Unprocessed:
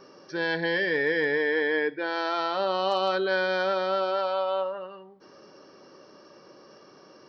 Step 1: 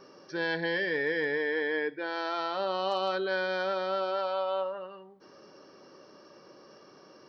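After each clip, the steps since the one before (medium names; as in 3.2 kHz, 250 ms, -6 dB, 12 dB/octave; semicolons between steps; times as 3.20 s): gain riding within 4 dB 2 s; trim -4.5 dB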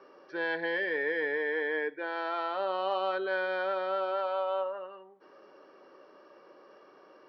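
three-band isolator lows -17 dB, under 300 Hz, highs -23 dB, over 3.3 kHz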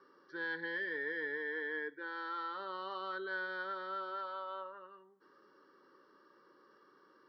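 static phaser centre 2.5 kHz, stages 6; trim -4.5 dB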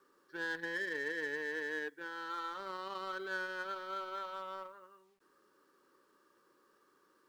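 companding laws mixed up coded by A; trim +3.5 dB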